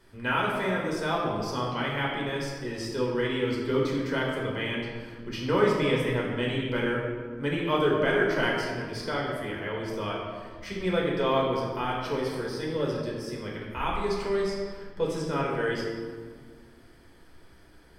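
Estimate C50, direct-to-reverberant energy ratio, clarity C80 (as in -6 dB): 1.0 dB, -4.0 dB, 3.0 dB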